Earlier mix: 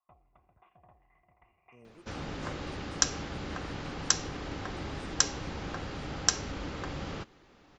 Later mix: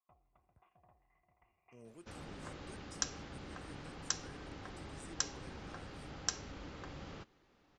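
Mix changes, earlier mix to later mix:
speech: add treble shelf 3 kHz +8.5 dB; first sound -7.5 dB; second sound -10.5 dB

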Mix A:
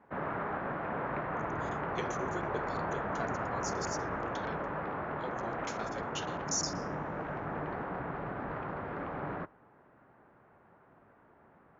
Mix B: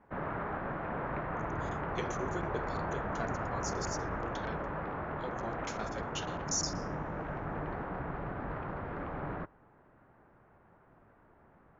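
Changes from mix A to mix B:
background: send -10.0 dB; master: remove high-pass 150 Hz 6 dB/octave

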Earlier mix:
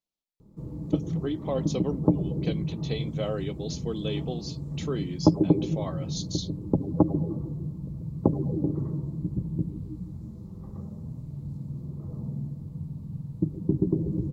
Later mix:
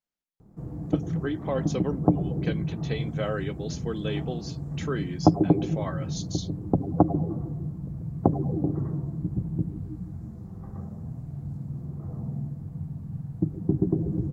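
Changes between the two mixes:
background: remove Butterworth band-stop 730 Hz, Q 4.5; master: add fifteen-band graphic EQ 100 Hz +3 dB, 1.6 kHz +12 dB, 4 kHz -5 dB

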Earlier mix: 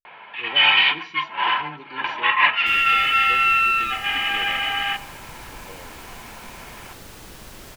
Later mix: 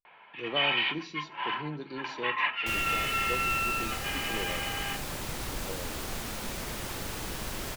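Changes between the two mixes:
speech +3.5 dB; first sound -12.0 dB; second sound +5.0 dB

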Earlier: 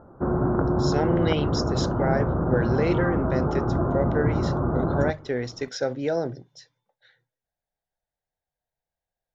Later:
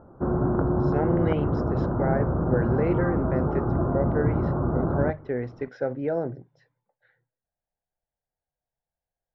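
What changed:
speech: add peaking EQ 3.6 kHz -9 dB 0.7 oct; master: add distance through air 470 m

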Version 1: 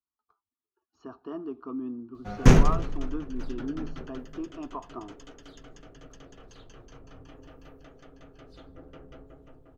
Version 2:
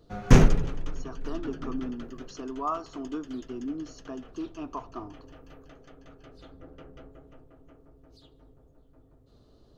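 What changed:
speech: remove distance through air 280 m; background: entry -2.15 s

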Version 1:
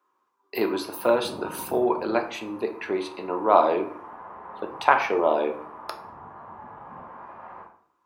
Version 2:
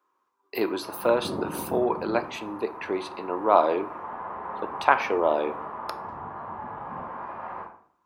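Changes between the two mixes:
speech: send -7.5 dB; background +6.0 dB

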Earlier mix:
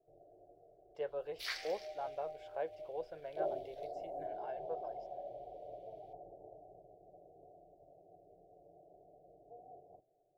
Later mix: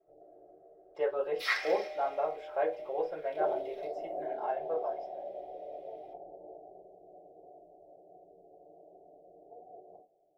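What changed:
first sound -3.5 dB; reverb: on, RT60 0.40 s

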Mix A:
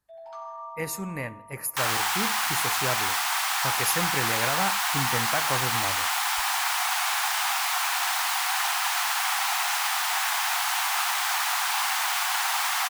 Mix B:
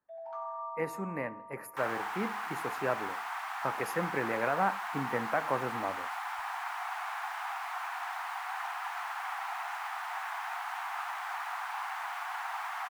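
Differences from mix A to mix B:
second sound -7.5 dB; master: add three-band isolator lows -20 dB, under 180 Hz, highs -19 dB, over 2 kHz

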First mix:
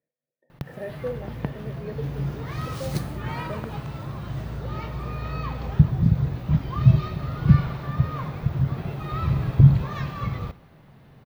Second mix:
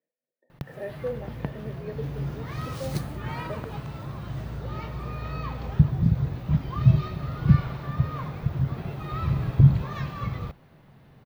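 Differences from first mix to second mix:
speech: add high-pass 190 Hz 24 dB/octave; reverb: off

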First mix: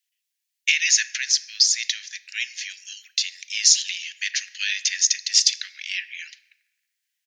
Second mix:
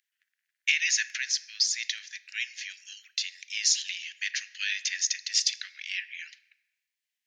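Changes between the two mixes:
speech: add treble shelf 2.6 kHz -10 dB; background: entry -2.50 s

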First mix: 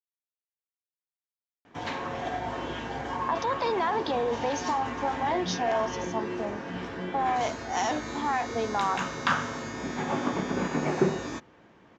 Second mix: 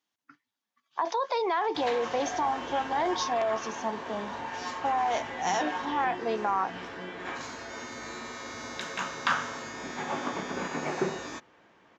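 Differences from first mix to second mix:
speech: entry -2.30 s; background: add bass shelf 370 Hz -11 dB

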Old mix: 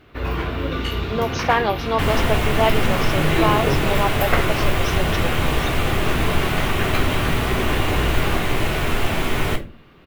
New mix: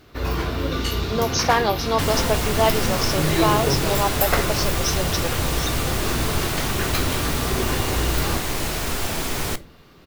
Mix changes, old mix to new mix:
second sound: send -11.5 dB; master: add resonant high shelf 3.8 kHz +9 dB, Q 1.5

